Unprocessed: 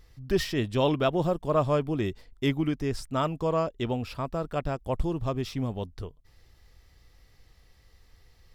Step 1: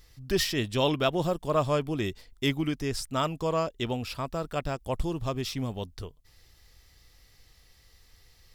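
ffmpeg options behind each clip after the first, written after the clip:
ffmpeg -i in.wav -af "highshelf=frequency=2400:gain=10,volume=-2dB" out.wav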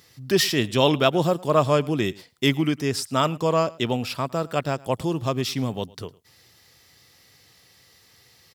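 ffmpeg -i in.wav -af "highpass=frequency=110:width=0.5412,highpass=frequency=110:width=1.3066,aecho=1:1:108:0.0708,volume=6.5dB" out.wav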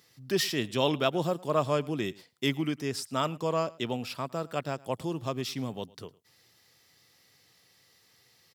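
ffmpeg -i in.wav -af "highpass=110,volume=-7.5dB" out.wav

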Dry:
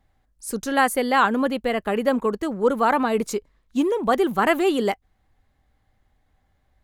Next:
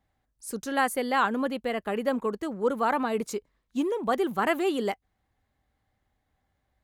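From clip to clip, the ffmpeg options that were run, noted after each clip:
ffmpeg -i in.wav -af "highpass=frequency=69:poles=1,volume=-6dB" out.wav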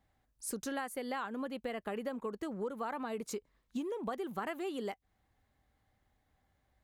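ffmpeg -i in.wav -af "acompressor=threshold=-35dB:ratio=10" out.wav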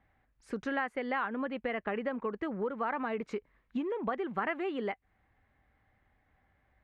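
ffmpeg -i in.wav -af "lowpass=frequency=2100:width_type=q:width=1.8,volume=3.5dB" out.wav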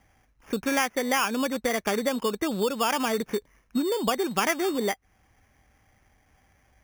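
ffmpeg -i in.wav -af "acrusher=samples=11:mix=1:aa=0.000001,volume=8dB" out.wav

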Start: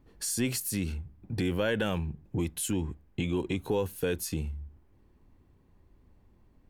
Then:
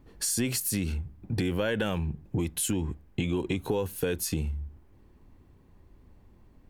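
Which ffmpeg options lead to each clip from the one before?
ffmpeg -i in.wav -af "acompressor=threshold=-30dB:ratio=4,volume=5dB" out.wav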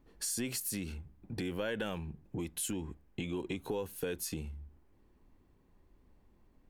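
ffmpeg -i in.wav -af "equalizer=frequency=96:width_type=o:width=1.4:gain=-6.5,volume=-7dB" out.wav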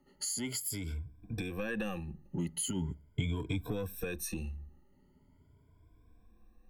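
ffmpeg -i in.wav -filter_complex "[0:a]afftfilt=real='re*pow(10,21/40*sin(2*PI*(1.7*log(max(b,1)*sr/1024/100)/log(2)-(0.41)*(pts-256)/sr)))':imag='im*pow(10,21/40*sin(2*PI*(1.7*log(max(b,1)*sr/1024/100)/log(2)-(0.41)*(pts-256)/sr)))':win_size=1024:overlap=0.75,acrossover=split=190|1100|2200[link_01][link_02][link_03][link_04];[link_01]dynaudnorm=framelen=290:gausssize=11:maxgain=9.5dB[link_05];[link_02]asoftclip=type=tanh:threshold=-30.5dB[link_06];[link_05][link_06][link_03][link_04]amix=inputs=4:normalize=0,volume=-4.5dB" out.wav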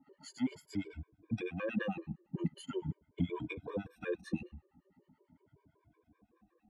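ffmpeg -i in.wav -filter_complex "[0:a]acrossover=split=880[link_01][link_02];[link_01]aeval=exprs='val(0)*(1-1/2+1/2*cos(2*PI*9*n/s))':channel_layout=same[link_03];[link_02]aeval=exprs='val(0)*(1-1/2-1/2*cos(2*PI*9*n/s))':channel_layout=same[link_04];[link_03][link_04]amix=inputs=2:normalize=0,highpass=160,lowpass=2300,afftfilt=real='re*gt(sin(2*PI*5.3*pts/sr)*(1-2*mod(floor(b*sr/1024/310),2)),0)':imag='im*gt(sin(2*PI*5.3*pts/sr)*(1-2*mod(floor(b*sr/1024/310),2)),0)':win_size=1024:overlap=0.75,volume=9.5dB" out.wav

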